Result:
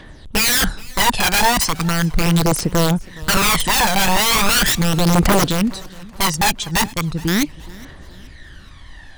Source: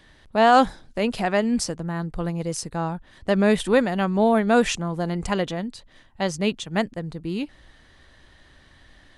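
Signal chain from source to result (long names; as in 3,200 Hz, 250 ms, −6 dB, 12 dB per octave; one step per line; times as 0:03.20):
wrap-around overflow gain 20.5 dB
phase shifter 0.38 Hz, delay 1.3 ms, feedback 61%
feedback echo with a swinging delay time 419 ms, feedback 44%, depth 107 cents, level −22 dB
level +8 dB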